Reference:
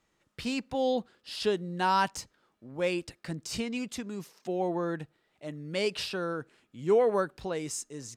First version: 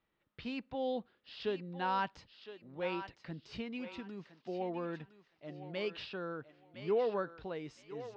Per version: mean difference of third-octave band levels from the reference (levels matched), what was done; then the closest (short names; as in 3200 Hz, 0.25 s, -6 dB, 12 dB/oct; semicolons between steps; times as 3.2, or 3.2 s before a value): 5.0 dB: LPF 3900 Hz 24 dB/oct; thinning echo 1.012 s, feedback 26%, high-pass 610 Hz, level -9.5 dB; gain -8 dB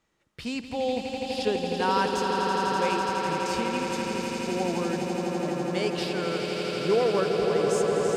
12.5 dB: high shelf 8800 Hz -3.5 dB; on a send: swelling echo 83 ms, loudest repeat 8, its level -7.5 dB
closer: first